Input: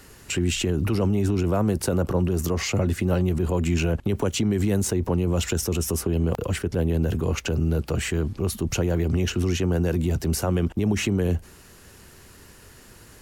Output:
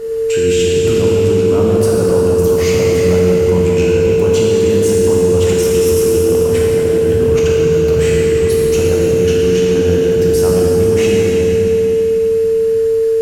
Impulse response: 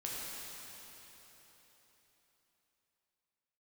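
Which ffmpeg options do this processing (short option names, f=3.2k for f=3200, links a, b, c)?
-filter_complex "[0:a]asplit=2[a][b];[b]alimiter=limit=-22dB:level=0:latency=1,volume=-0.5dB[c];[a][c]amix=inputs=2:normalize=0,aeval=exprs='val(0)+0.0794*sin(2*PI*450*n/s)':c=same[d];[1:a]atrim=start_sample=2205[e];[d][e]afir=irnorm=-1:irlink=0,volume=2dB"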